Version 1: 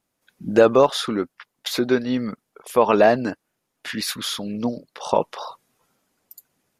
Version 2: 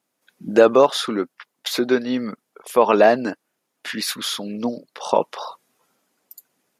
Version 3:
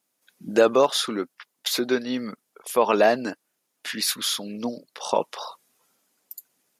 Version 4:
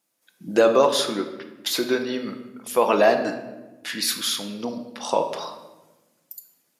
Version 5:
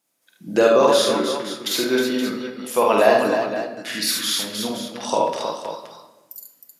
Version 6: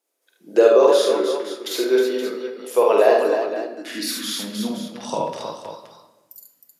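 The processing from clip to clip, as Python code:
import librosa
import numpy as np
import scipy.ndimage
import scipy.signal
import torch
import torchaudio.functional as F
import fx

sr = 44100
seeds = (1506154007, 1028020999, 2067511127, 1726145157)

y1 = scipy.signal.sosfilt(scipy.signal.butter(2, 200.0, 'highpass', fs=sr, output='sos'), x)
y1 = y1 * 10.0 ** (1.5 / 20.0)
y2 = fx.high_shelf(y1, sr, hz=3300.0, db=8.5)
y2 = y2 * 10.0 ** (-5.0 / 20.0)
y3 = fx.room_shoebox(y2, sr, seeds[0], volume_m3=640.0, walls='mixed', distance_m=0.74)
y4 = fx.echo_multitap(y3, sr, ms=(47, 75, 314, 522), db=(-3.0, -4.5, -6.5, -10.0))
y5 = fx.filter_sweep_highpass(y4, sr, from_hz=410.0, to_hz=70.0, start_s=3.44, end_s=6.33, q=3.5)
y5 = y5 * 10.0 ** (-5.0 / 20.0)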